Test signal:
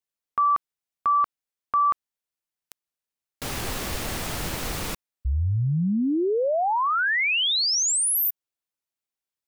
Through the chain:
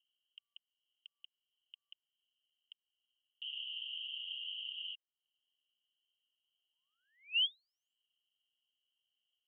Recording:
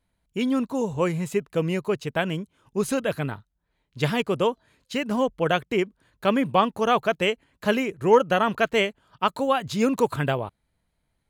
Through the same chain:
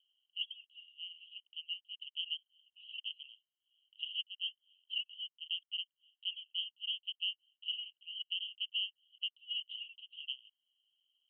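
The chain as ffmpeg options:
-af "asuperpass=centerf=3000:order=8:qfactor=7.3,alimiter=level_in=6dB:limit=-24dB:level=0:latency=1:release=386,volume=-6dB,acompressor=mode=upward:threshold=-56dB:ratio=1.5:attack=63:release=225:knee=2.83:detection=peak,volume=3.5dB"

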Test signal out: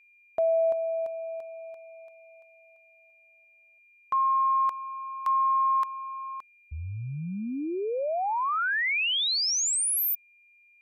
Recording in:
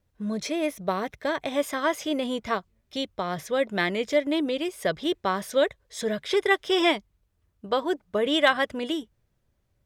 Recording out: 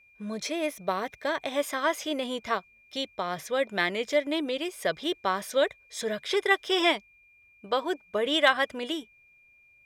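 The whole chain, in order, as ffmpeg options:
-af "aeval=exprs='val(0)+0.00141*sin(2*PI*2400*n/s)':c=same,lowshelf=f=320:g=-9"

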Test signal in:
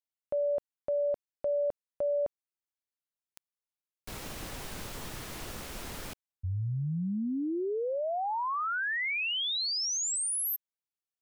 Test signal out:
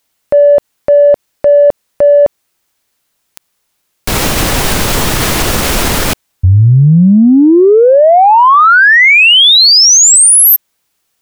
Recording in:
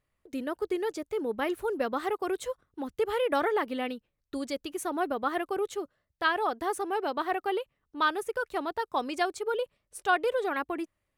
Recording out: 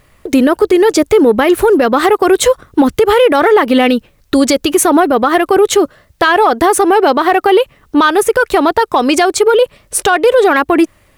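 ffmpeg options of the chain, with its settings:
-filter_complex "[0:a]asplit=2[a][b];[b]asoftclip=type=tanh:threshold=-29.5dB,volume=-9.5dB[c];[a][c]amix=inputs=2:normalize=0,acompressor=threshold=-29dB:ratio=4:attack=0.81:release=594:knee=1:detection=peak,alimiter=level_in=29dB:limit=-1dB:release=50:level=0:latency=1,volume=-1dB"

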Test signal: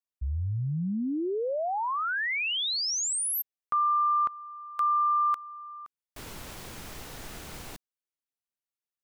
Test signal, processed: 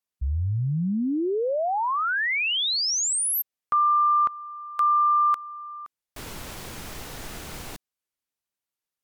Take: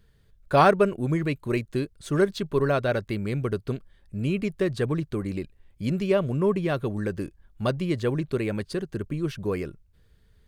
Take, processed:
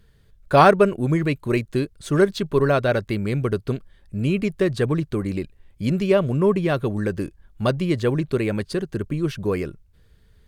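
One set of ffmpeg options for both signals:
-af "volume=4.5dB" -ar 48000 -c:a libvorbis -b:a 192k

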